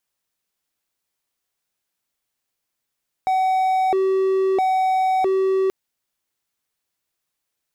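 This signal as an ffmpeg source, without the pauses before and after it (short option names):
-f lavfi -i "aevalsrc='0.2*(1-4*abs(mod((568*t+186/0.76*(0.5-abs(mod(0.76*t,1)-0.5)))+0.25,1)-0.5))':d=2.43:s=44100"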